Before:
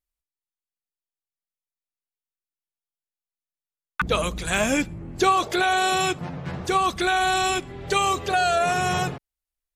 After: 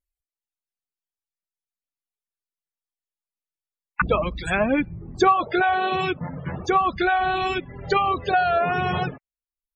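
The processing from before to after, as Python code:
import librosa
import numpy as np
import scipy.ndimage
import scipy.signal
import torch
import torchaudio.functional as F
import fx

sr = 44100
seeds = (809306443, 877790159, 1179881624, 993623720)

y = fx.dereverb_blind(x, sr, rt60_s=0.81)
y = fx.env_lowpass_down(y, sr, base_hz=2000.0, full_db=-20.0)
y = fx.spec_topn(y, sr, count=64)
y = F.gain(torch.from_numpy(y), 3.0).numpy()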